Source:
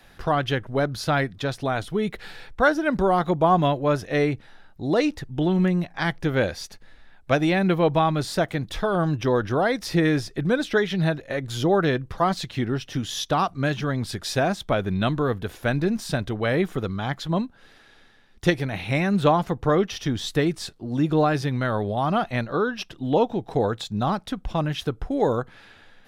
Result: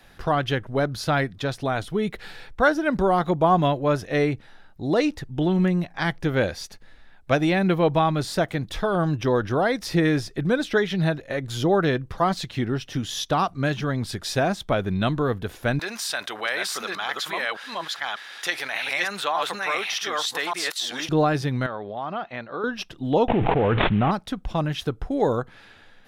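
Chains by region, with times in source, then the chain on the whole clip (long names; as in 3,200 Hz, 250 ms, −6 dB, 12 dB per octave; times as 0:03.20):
0:15.79–0:21.09: delay that plays each chunk backwards 593 ms, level −1.5 dB + high-pass filter 1,100 Hz + envelope flattener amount 50%
0:21.66–0:22.64: high-pass filter 550 Hz 6 dB per octave + high-frequency loss of the air 210 metres + downward compressor 1.5 to 1, threshold −31 dBFS
0:23.28–0:24.11: variable-slope delta modulation 16 kbit/s + envelope flattener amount 100%
whole clip: no processing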